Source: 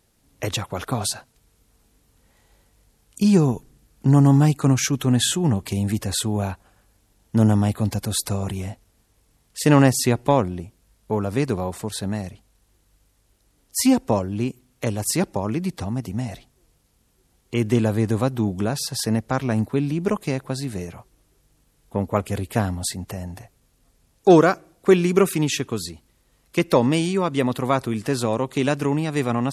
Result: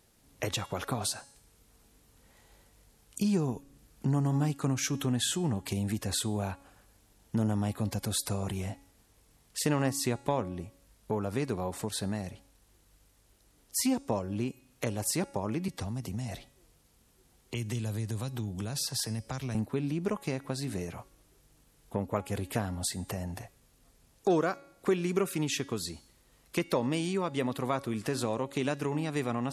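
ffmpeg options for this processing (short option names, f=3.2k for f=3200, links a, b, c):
-filter_complex "[0:a]asettb=1/sr,asplit=3[a][b][c];[a]atrim=end=15.684[d];[b]atrim=start=15.68:end=19.55,asetpts=PTS-STARTPTS,afade=t=in:d=0.004:c=qsin,afade=t=out:st=3.866:d=0.004:c=qsin,acrossover=split=130|3000[e][f][g];[f]acompressor=threshold=-33dB:ratio=6:attack=3.2:release=140:knee=2.83:detection=peak[h];[e][h][g]amix=inputs=3:normalize=0[i];[c]atrim=start=19.546[j];[d][i]acrossfade=d=0.004:c1=hsin:c2=qsin[k];[k][j]acrossfade=d=0.004:c1=qsin:c2=hsin,lowshelf=f=180:g=-3,bandreject=f=278.7:t=h:w=4,bandreject=f=557.4:t=h:w=4,bandreject=f=836.1:t=h:w=4,bandreject=f=1.1148k:t=h:w=4,bandreject=f=1.3935k:t=h:w=4,bandreject=f=1.6722k:t=h:w=4,bandreject=f=1.9509k:t=h:w=4,bandreject=f=2.2296k:t=h:w=4,bandreject=f=2.5083k:t=h:w=4,bandreject=f=2.787k:t=h:w=4,bandreject=f=3.0657k:t=h:w=4,bandreject=f=3.3444k:t=h:w=4,bandreject=f=3.6231k:t=h:w=4,bandreject=f=3.9018k:t=h:w=4,bandreject=f=4.1805k:t=h:w=4,bandreject=f=4.4592k:t=h:w=4,bandreject=f=4.7379k:t=h:w=4,bandreject=f=5.0166k:t=h:w=4,bandreject=f=5.2953k:t=h:w=4,bandreject=f=5.574k:t=h:w=4,bandreject=f=5.8527k:t=h:w=4,bandreject=f=6.1314k:t=h:w=4,bandreject=f=6.4101k:t=h:w=4,bandreject=f=6.6888k:t=h:w=4,bandreject=f=6.9675k:t=h:w=4,bandreject=f=7.2462k:t=h:w=4,bandreject=f=7.5249k:t=h:w=4,bandreject=f=7.8036k:t=h:w=4,bandreject=f=8.0823k:t=h:w=4,bandreject=f=8.361k:t=h:w=4,bandreject=f=8.6397k:t=h:w=4,bandreject=f=8.9184k:t=h:w=4,bandreject=f=9.1971k:t=h:w=4,bandreject=f=9.4758k:t=h:w=4,bandreject=f=9.7545k:t=h:w=4,bandreject=f=10.0332k:t=h:w=4,acompressor=threshold=-34dB:ratio=2"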